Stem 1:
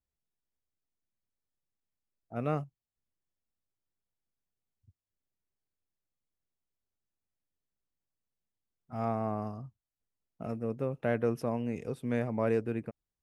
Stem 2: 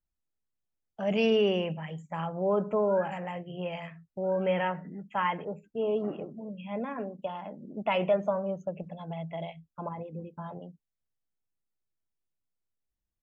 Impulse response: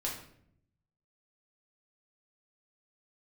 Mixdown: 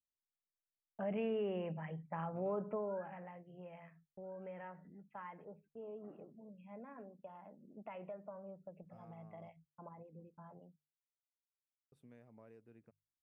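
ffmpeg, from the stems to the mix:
-filter_complex "[0:a]acompressor=threshold=-41dB:ratio=4,volume=-17.5dB,asplit=3[link_01][link_02][link_03];[link_01]atrim=end=9.49,asetpts=PTS-STARTPTS,afade=type=out:start_time=9.486:duration=0.004:curve=hsin[link_04];[link_02]atrim=start=9.49:end=11.92,asetpts=PTS-STARTPTS,volume=0[link_05];[link_03]atrim=start=11.92,asetpts=PTS-STARTPTS,afade=type=in:duration=0.004:curve=hsin[link_06];[link_04][link_05][link_06]concat=n=3:v=0:a=1[link_07];[1:a]agate=range=-33dB:threshold=-47dB:ratio=3:detection=peak,lowpass=frequency=2200:width=0.5412,lowpass=frequency=2200:width=1.3066,acompressor=threshold=-32dB:ratio=2.5,volume=-5.5dB,afade=type=out:start_time=2.6:duration=0.75:silence=0.316228[link_08];[link_07][link_08]amix=inputs=2:normalize=0,bandreject=frequency=50:width_type=h:width=6,bandreject=frequency=100:width_type=h:width=6,bandreject=frequency=150:width_type=h:width=6"

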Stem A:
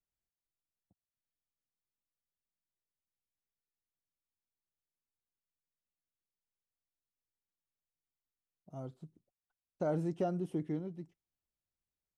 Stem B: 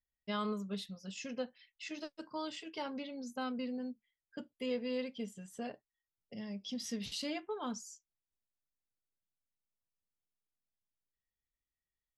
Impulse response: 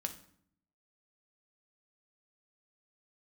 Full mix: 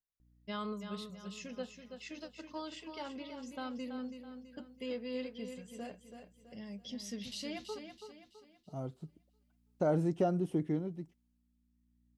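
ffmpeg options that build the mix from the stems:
-filter_complex "[0:a]dynaudnorm=framelen=120:gausssize=17:maxgain=11dB,volume=-7.5dB,asplit=2[link_01][link_02];[1:a]aeval=exprs='val(0)+0.000708*(sin(2*PI*60*n/s)+sin(2*PI*2*60*n/s)/2+sin(2*PI*3*60*n/s)/3+sin(2*PI*4*60*n/s)/4+sin(2*PI*5*60*n/s)/5)':channel_layout=same,adelay=200,volume=-3dB,asplit=3[link_03][link_04][link_05];[link_03]atrim=end=7.79,asetpts=PTS-STARTPTS,afade=type=out:start_time=7.786:duration=0.004:curve=hsin[link_06];[link_04]atrim=start=7.79:end=8.77,asetpts=PTS-STARTPTS,volume=0[link_07];[link_05]atrim=start=8.77,asetpts=PTS-STARTPTS,afade=type=in:duration=0.004:curve=hsin[link_08];[link_06][link_07][link_08]concat=n=3:v=0:a=1,asplit=2[link_09][link_10];[link_10]volume=-8dB[link_11];[link_02]apad=whole_len=545912[link_12];[link_09][link_12]sidechaincompress=threshold=-47dB:ratio=8:attack=16:release=1270[link_13];[link_11]aecho=0:1:329|658|987|1316|1645|1974:1|0.4|0.16|0.064|0.0256|0.0102[link_14];[link_01][link_13][link_14]amix=inputs=3:normalize=0"

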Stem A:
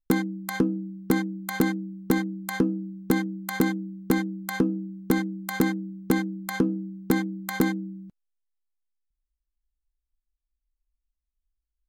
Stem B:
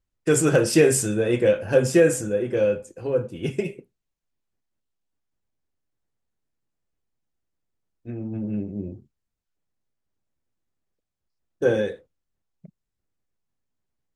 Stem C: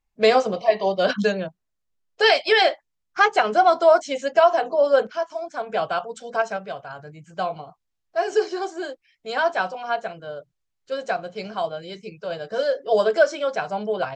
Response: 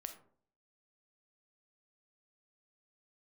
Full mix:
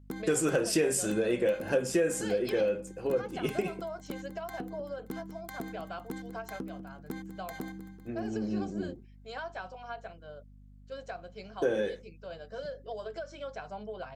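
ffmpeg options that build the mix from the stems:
-filter_complex "[0:a]volume=-12.5dB,asplit=2[link_01][link_02];[link_02]volume=-17.5dB[link_03];[1:a]equalizer=frequency=110:width_type=o:width=1.1:gain=-10.5,aeval=exprs='val(0)+0.00282*(sin(2*PI*50*n/s)+sin(2*PI*2*50*n/s)/2+sin(2*PI*3*50*n/s)/3+sin(2*PI*4*50*n/s)/4+sin(2*PI*5*50*n/s)/5)':channel_layout=same,volume=-1.5dB[link_04];[2:a]acompressor=threshold=-19dB:ratio=6,volume=-13.5dB[link_05];[link_01][link_05]amix=inputs=2:normalize=0,acompressor=threshold=-35dB:ratio=5,volume=0dB[link_06];[link_03]aecho=0:1:192|384|576|768|960|1152|1344|1536|1728:1|0.58|0.336|0.195|0.113|0.0656|0.0381|0.0221|0.0128[link_07];[link_04][link_06][link_07]amix=inputs=3:normalize=0,acompressor=threshold=-26dB:ratio=3"

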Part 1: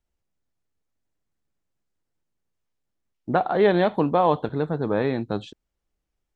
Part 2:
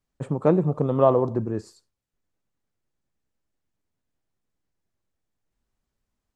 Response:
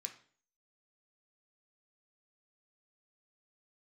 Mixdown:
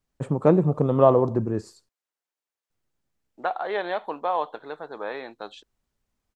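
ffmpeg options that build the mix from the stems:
-filter_complex "[0:a]highpass=670,adynamicequalizer=threshold=0.0126:dfrequency=1900:dqfactor=0.7:tfrequency=1900:tqfactor=0.7:attack=5:release=100:ratio=0.375:range=2.5:mode=cutabove:tftype=highshelf,adelay=100,volume=-2.5dB[link_01];[1:a]volume=1.5dB,asplit=3[link_02][link_03][link_04];[link_02]atrim=end=1.89,asetpts=PTS-STARTPTS,afade=type=out:start_time=1.886:duration=0.004:curve=hsin[link_05];[link_03]atrim=start=1.89:end=2.7,asetpts=PTS-STARTPTS,volume=0[link_06];[link_04]atrim=start=2.7,asetpts=PTS-STARTPTS,afade=type=in:duration=0.004:curve=hsin[link_07];[link_05][link_06][link_07]concat=n=3:v=0:a=1[link_08];[link_01][link_08]amix=inputs=2:normalize=0"

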